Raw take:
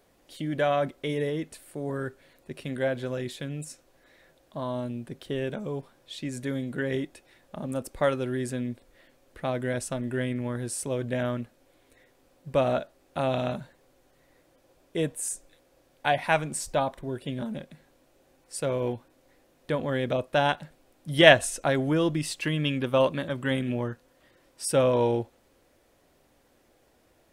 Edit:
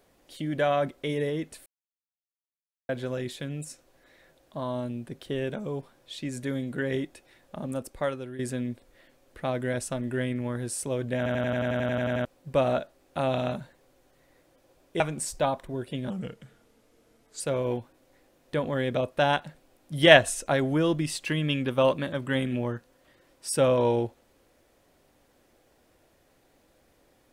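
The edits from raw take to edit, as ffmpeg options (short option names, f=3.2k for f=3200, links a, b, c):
-filter_complex "[0:a]asplit=19[a][b][c][d][e][f][g][h][i][j][k][l][m][n][o][p][q][r][s];[a]atrim=end=1.66,asetpts=PTS-STARTPTS,afade=t=out:st=1.656:d=0.004:c=hsin[t];[b]atrim=start=1.66:end=2.89,asetpts=PTS-STARTPTS,volume=0[u];[c]atrim=start=2.89:end=8.39,asetpts=PTS-STARTPTS,afade=t=in:d=0.004:c=hsin,afade=t=out:st=4.74:d=0.76:silence=0.266073[v];[d]atrim=start=8.39:end=11.262,asetpts=PTS-STARTPTS,afade=t=in:d=0.004:c=hsin:silence=0.266073[w];[e]atrim=start=11.168:end=11.262[x];[f]atrim=start=11.168:end=11.262[y];[g]atrim=start=11.168:end=11.262[z];[h]atrim=start=11.168:end=11.262[aa];[i]atrim=start=11.168:end=11.262[ab];[j]atrim=start=11.168:end=11.262[ac];[k]atrim=start=11.168:end=11.262[ad];[l]atrim=start=11.168:end=11.262[ae];[m]atrim=start=11.168:end=11.262[af];[n]atrim=start=11.168:end=11.262[ag];[o]atrim=start=11.168:end=11.262[ah];[p]atrim=start=12.248:end=15.002[ai];[q]atrim=start=16.338:end=17.444[aj];[r]atrim=start=17.44:end=18.56,asetpts=PTS-STARTPTS,asetrate=37926,aresample=44100[ak];[s]atrim=start=18.556[al];[t][u][v][w]concat=n=4:v=0:a=1[am];[am][x]acrossfade=d=0.004:c1=hsin:c2=hsin[an];[an][y]acrossfade=d=0.004:c1=hsin:c2=hsin[ao];[ao][z]acrossfade=d=0.004:c1=hsin:c2=hsin[ap];[ap][aa]acrossfade=d=0.004:c1=hsin:c2=hsin[aq];[aq][ab]acrossfade=d=0.004:c1=hsin:c2=hsin[ar];[ar][ac]acrossfade=d=0.004:c1=hsin:c2=hsin[as];[as][ad]acrossfade=d=0.004:c1=hsin:c2=hsin[at];[at][ae]acrossfade=d=0.004:c1=hsin:c2=hsin[au];[au][af]acrossfade=d=0.004:c1=hsin:c2=hsin[av];[av][ag]acrossfade=d=0.004:c1=hsin:c2=hsin[aw];[aw][ah]acrossfade=d=0.004:c1=hsin:c2=hsin[ax];[ax][ai]acrossfade=d=0.004:c1=hsin:c2=hsin[ay];[ay][aj]acrossfade=d=0.004:c1=hsin:c2=hsin[az];[az][ak]acrossfade=d=0.004:c1=hsin:c2=hsin[ba];[ba][al]acrossfade=d=0.004:c1=hsin:c2=hsin"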